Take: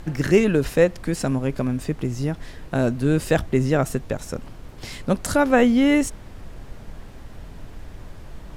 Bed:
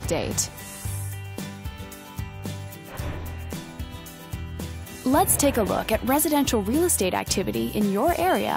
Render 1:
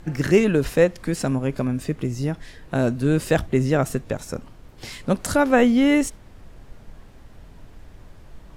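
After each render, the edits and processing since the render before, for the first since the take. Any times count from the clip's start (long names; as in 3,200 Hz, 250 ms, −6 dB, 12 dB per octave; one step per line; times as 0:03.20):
noise reduction from a noise print 6 dB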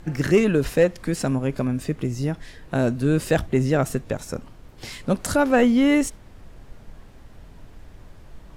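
soft clipping −5.5 dBFS, distortion −24 dB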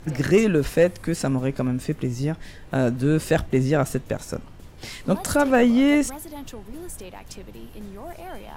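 mix in bed −16.5 dB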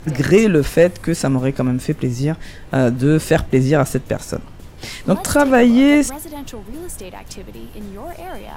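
level +6 dB
brickwall limiter −2 dBFS, peak gain reduction 1 dB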